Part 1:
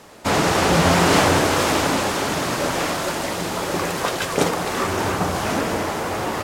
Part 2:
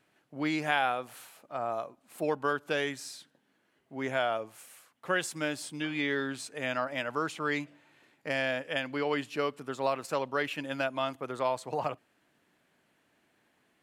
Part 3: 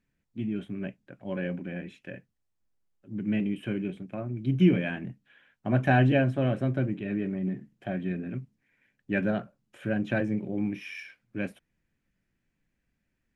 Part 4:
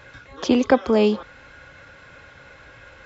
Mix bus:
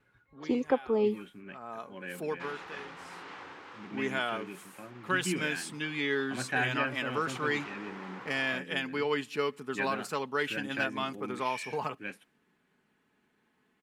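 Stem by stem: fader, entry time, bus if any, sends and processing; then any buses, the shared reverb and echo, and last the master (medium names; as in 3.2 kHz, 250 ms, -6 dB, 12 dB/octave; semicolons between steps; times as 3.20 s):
3.49 s -14.5 dB -> 4.17 s -22.5 dB -> 6.97 s -22.5 dB -> 7.39 s -12 dB, 2.15 s, no send, low-pass 2.6 kHz 12 dB/octave; compression 6:1, threshold -20 dBFS, peak gain reduction 8 dB; high-pass 1.2 kHz 6 dB/octave
0.0 dB, 0.00 s, no send, comb 4.7 ms, depth 43%; vibrato 0.6 Hz 13 cents; auto duck -19 dB, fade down 0.70 s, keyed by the fourth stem
+0.5 dB, 0.65 s, no send, high-pass 1.1 kHz 6 dB/octave
-19.0 dB, 0.00 s, no send, expander on every frequency bin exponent 1.5; peaking EQ 550 Hz +14 dB 2.8 oct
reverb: none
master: peaking EQ 630 Hz -12 dB 0.33 oct; tape noise reduction on one side only decoder only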